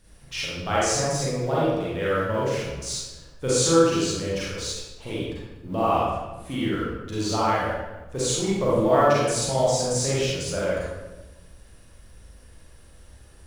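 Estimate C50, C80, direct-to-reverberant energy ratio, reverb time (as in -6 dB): -4.5 dB, 0.5 dB, -8.5 dB, 1.2 s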